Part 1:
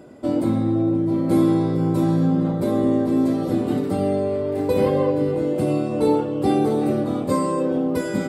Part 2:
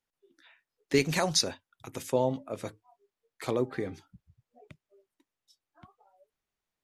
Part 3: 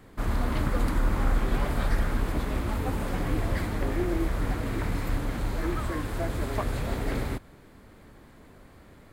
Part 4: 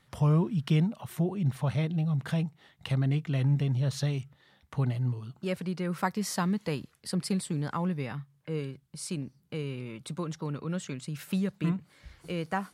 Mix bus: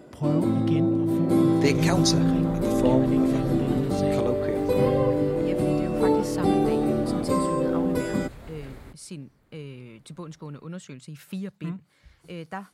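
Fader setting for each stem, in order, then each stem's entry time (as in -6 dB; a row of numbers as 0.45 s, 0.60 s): -3.0 dB, +1.0 dB, -13.5 dB, -4.0 dB; 0.00 s, 0.70 s, 1.55 s, 0.00 s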